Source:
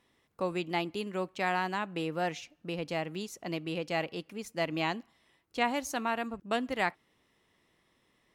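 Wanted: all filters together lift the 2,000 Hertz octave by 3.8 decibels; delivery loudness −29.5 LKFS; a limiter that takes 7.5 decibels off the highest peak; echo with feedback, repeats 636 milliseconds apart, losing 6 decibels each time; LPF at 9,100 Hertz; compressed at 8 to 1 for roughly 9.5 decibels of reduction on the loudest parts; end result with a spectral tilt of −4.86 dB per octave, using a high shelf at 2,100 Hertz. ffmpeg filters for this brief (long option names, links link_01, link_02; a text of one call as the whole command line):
ffmpeg -i in.wav -af "lowpass=9100,equalizer=frequency=2000:width_type=o:gain=7,highshelf=frequency=2100:gain=-4.5,acompressor=threshold=-31dB:ratio=8,alimiter=level_in=4.5dB:limit=-24dB:level=0:latency=1,volume=-4.5dB,aecho=1:1:636|1272|1908|2544|3180|3816:0.501|0.251|0.125|0.0626|0.0313|0.0157,volume=10dB" out.wav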